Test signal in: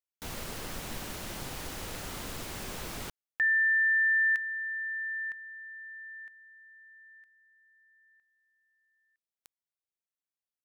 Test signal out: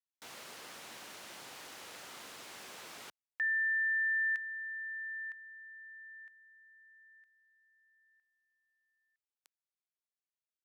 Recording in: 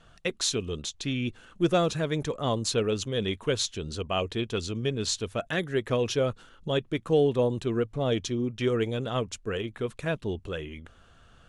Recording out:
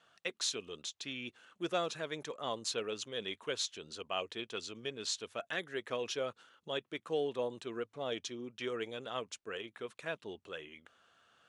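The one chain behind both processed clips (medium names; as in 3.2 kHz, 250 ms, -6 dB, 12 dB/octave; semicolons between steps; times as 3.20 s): frequency weighting A; trim -7.5 dB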